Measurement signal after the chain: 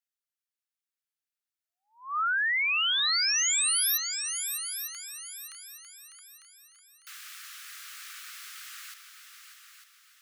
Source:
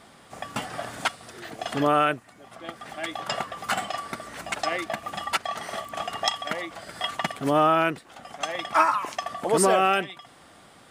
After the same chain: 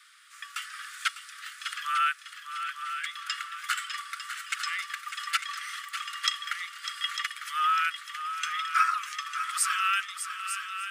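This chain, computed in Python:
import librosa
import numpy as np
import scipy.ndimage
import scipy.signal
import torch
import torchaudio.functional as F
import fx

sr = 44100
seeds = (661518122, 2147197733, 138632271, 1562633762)

y = scipy.signal.sosfilt(scipy.signal.butter(16, 1200.0, 'highpass', fs=sr, output='sos'), x)
y = fx.echo_heads(y, sr, ms=300, heads='second and third', feedback_pct=41, wet_db=-9.5)
y = y * librosa.db_to_amplitude(-1.0)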